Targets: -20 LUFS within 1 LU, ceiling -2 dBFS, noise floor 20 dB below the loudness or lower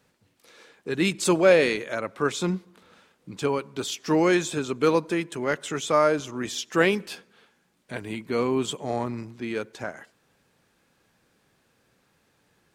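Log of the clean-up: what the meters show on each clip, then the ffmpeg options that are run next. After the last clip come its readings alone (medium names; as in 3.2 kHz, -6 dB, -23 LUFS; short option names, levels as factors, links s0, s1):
loudness -25.0 LUFS; peak level -5.0 dBFS; loudness target -20.0 LUFS
-> -af "volume=1.78,alimiter=limit=0.794:level=0:latency=1"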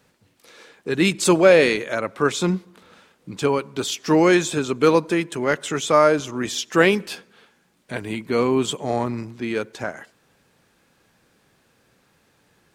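loudness -20.5 LUFS; peak level -2.0 dBFS; noise floor -63 dBFS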